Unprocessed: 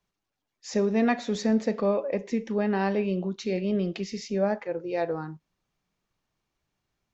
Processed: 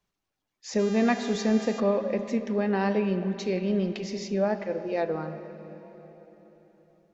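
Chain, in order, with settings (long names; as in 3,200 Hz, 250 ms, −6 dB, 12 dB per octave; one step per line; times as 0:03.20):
0:00.78–0:01.79: hum with harmonics 400 Hz, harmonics 18, −43 dBFS −3 dB per octave
tape wow and flutter 20 cents
on a send: convolution reverb RT60 4.0 s, pre-delay 85 ms, DRR 10.5 dB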